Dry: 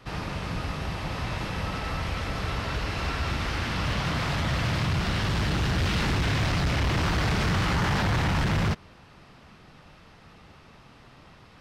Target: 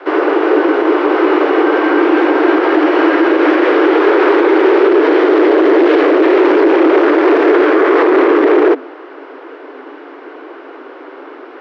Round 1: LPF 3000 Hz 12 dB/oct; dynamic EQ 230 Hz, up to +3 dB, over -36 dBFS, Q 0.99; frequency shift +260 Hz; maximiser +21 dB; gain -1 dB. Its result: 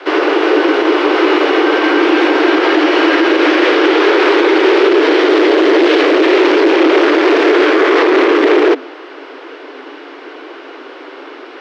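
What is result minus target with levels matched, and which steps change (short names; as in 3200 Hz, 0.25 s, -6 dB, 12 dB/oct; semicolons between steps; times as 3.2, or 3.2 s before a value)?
4000 Hz band +9.5 dB
change: LPF 1400 Hz 12 dB/oct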